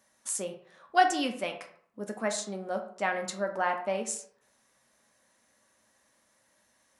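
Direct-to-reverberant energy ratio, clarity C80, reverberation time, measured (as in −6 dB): 3.5 dB, 13.0 dB, 0.60 s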